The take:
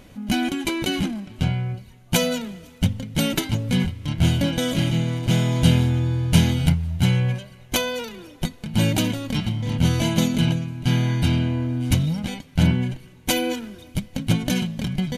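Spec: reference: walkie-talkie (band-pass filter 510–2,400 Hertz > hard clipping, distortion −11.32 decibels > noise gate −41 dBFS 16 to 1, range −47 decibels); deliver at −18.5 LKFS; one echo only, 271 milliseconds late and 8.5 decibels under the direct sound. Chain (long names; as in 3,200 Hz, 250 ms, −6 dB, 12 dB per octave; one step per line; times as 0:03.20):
band-pass filter 510–2,400 Hz
single-tap delay 271 ms −8.5 dB
hard clipping −27.5 dBFS
noise gate −41 dBFS 16 to 1, range −47 dB
level +15.5 dB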